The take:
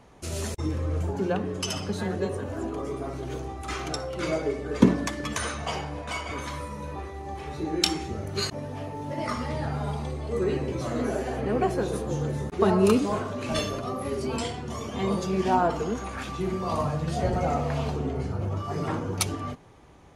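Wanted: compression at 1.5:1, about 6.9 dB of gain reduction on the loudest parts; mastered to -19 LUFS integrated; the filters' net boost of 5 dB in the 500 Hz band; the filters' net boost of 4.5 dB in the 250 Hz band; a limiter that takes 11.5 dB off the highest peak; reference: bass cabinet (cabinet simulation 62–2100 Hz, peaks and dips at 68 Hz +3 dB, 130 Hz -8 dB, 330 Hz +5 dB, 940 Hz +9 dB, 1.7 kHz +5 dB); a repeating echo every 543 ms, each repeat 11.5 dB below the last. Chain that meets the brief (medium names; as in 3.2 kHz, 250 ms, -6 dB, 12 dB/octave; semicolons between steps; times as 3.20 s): peaking EQ 250 Hz +3 dB; peaking EQ 500 Hz +3.5 dB; compression 1.5:1, threshold -28 dBFS; peak limiter -18 dBFS; cabinet simulation 62–2100 Hz, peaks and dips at 68 Hz +3 dB, 130 Hz -8 dB, 330 Hz +5 dB, 940 Hz +9 dB, 1.7 kHz +5 dB; feedback delay 543 ms, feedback 27%, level -11.5 dB; trim +9 dB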